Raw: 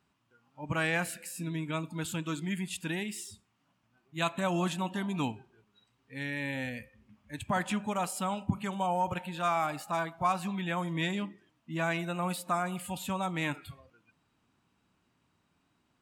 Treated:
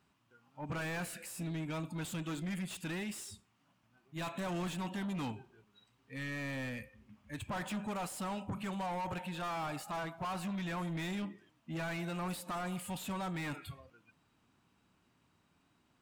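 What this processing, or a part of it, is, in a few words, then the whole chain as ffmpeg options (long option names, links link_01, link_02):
saturation between pre-emphasis and de-emphasis: -af "highshelf=frequency=2300:gain=10,asoftclip=type=tanh:threshold=-35dB,highshelf=frequency=2300:gain=-10,volume=1dB"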